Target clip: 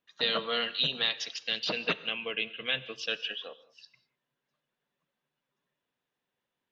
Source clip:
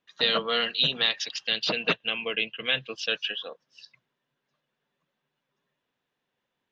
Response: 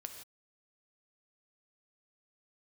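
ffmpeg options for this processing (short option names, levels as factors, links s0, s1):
-filter_complex "[0:a]asplit=2[s0][s1];[1:a]atrim=start_sample=2205,asetrate=37044,aresample=44100[s2];[s1][s2]afir=irnorm=-1:irlink=0,volume=0.596[s3];[s0][s3]amix=inputs=2:normalize=0,volume=0.422"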